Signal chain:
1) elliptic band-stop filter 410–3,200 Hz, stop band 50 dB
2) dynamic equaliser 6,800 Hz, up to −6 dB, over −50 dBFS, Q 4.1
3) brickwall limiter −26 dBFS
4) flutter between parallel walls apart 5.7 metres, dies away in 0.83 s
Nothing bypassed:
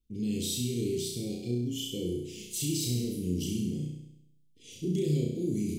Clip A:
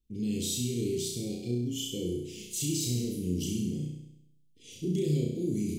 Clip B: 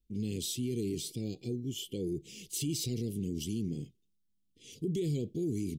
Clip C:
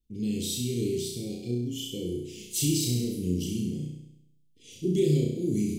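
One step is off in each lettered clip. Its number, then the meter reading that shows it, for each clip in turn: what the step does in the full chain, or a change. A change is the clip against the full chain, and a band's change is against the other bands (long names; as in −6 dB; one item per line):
2, 8 kHz band +1.5 dB
4, change in momentary loudness spread −2 LU
3, change in crest factor +2.0 dB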